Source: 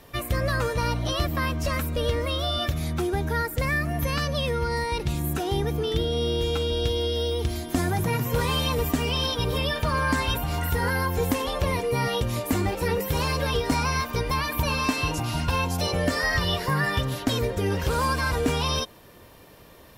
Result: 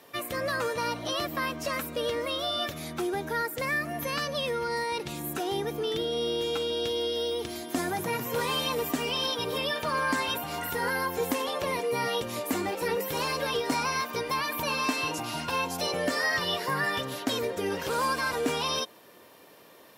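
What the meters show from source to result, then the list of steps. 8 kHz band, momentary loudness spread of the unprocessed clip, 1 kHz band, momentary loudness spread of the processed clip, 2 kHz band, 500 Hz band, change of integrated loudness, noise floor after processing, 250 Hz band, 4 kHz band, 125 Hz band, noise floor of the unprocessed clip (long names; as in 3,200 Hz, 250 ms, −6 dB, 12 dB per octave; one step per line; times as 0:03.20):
−2.0 dB, 3 LU, −2.0 dB, 4 LU, −2.0 dB, −2.5 dB, −3.5 dB, −53 dBFS, −5.5 dB, −2.0 dB, −15.5 dB, −49 dBFS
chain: high-pass filter 260 Hz 12 dB per octave
level −2 dB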